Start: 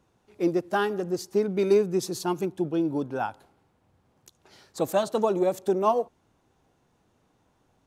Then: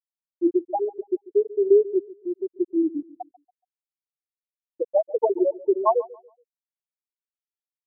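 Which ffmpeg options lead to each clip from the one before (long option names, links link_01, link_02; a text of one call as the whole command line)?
ffmpeg -i in.wav -filter_complex "[0:a]afftfilt=real='re*gte(hypot(re,im),0.501)':imag='im*gte(hypot(re,im),0.501)':win_size=1024:overlap=0.75,asplit=2[link_01][link_02];[link_02]adelay=141,lowpass=frequency=1300:poles=1,volume=-19dB,asplit=2[link_03][link_04];[link_04]adelay=141,lowpass=frequency=1300:poles=1,volume=0.32,asplit=2[link_05][link_06];[link_06]adelay=141,lowpass=frequency=1300:poles=1,volume=0.32[link_07];[link_01][link_03][link_05][link_07]amix=inputs=4:normalize=0,volume=4.5dB" out.wav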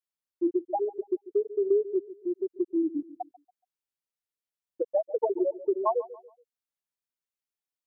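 ffmpeg -i in.wav -af "acompressor=threshold=-27dB:ratio=2" out.wav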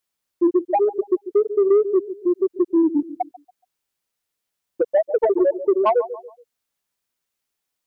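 ffmpeg -i in.wav -filter_complex "[0:a]asplit=2[link_01][link_02];[link_02]alimiter=level_in=1.5dB:limit=-24dB:level=0:latency=1:release=20,volume=-1.5dB,volume=-1dB[link_03];[link_01][link_03]amix=inputs=2:normalize=0,asoftclip=type=tanh:threshold=-16dB,volume=7dB" out.wav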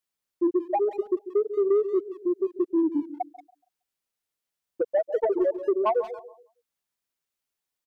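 ffmpeg -i in.wav -filter_complex "[0:a]asplit=2[link_01][link_02];[link_02]adelay=180,highpass=300,lowpass=3400,asoftclip=type=hard:threshold=-20dB,volume=-15dB[link_03];[link_01][link_03]amix=inputs=2:normalize=0,volume=-6dB" out.wav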